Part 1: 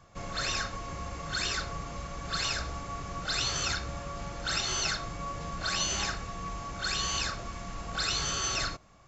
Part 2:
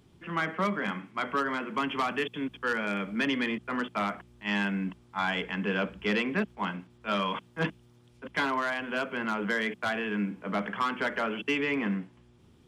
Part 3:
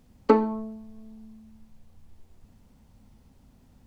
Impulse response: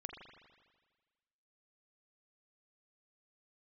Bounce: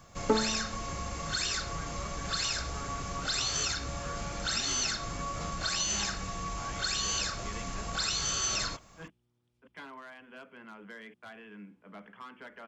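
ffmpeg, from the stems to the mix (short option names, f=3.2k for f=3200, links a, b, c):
-filter_complex "[0:a]acompressor=threshold=-33dB:ratio=6,crystalizer=i=1.5:c=0,volume=1.5dB[a];[1:a]adelay=1400,volume=-18dB[b];[2:a]volume=-8dB[c];[a][b][c]amix=inputs=3:normalize=0"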